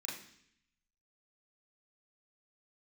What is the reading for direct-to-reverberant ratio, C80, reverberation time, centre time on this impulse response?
−5.5 dB, 8.5 dB, 0.65 s, 44 ms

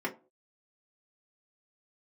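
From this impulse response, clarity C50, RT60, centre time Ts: 15.5 dB, non-exponential decay, 11 ms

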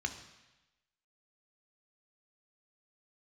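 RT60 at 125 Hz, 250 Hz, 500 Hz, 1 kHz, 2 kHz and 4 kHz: 1.0, 1.0, 0.95, 1.1, 1.1, 1.1 seconds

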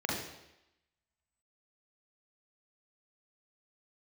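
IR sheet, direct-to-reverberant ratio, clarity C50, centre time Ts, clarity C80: −3.0 dB, 2.0 dB, 55 ms, 5.5 dB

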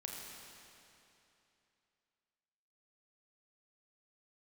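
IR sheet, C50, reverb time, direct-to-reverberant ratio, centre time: 0.0 dB, 2.9 s, −1.5 dB, 136 ms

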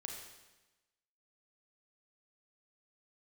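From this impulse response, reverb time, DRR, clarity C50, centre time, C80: 1.1 s, 1.0 dB, 3.0 dB, 49 ms, 5.0 dB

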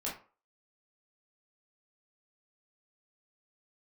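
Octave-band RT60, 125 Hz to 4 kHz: 0.30, 0.35, 0.40, 0.40, 0.30, 0.25 seconds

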